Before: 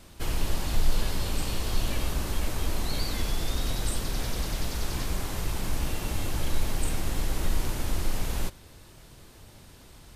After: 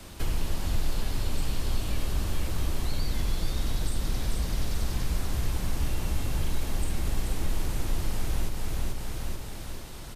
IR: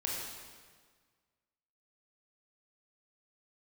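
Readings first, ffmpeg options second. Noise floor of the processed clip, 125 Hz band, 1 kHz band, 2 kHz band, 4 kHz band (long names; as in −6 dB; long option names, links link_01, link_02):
−38 dBFS, +1.5 dB, −3.0 dB, −3.0 dB, −3.0 dB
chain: -filter_complex "[0:a]aecho=1:1:435|870|1305|1740|2175|2610:0.501|0.261|0.136|0.0705|0.0366|0.0191,acrossover=split=140|290[link_01][link_02][link_03];[link_01]acompressor=threshold=-29dB:ratio=4[link_04];[link_02]acompressor=threshold=-50dB:ratio=4[link_05];[link_03]acompressor=threshold=-46dB:ratio=4[link_06];[link_04][link_05][link_06]amix=inputs=3:normalize=0,volume=6dB"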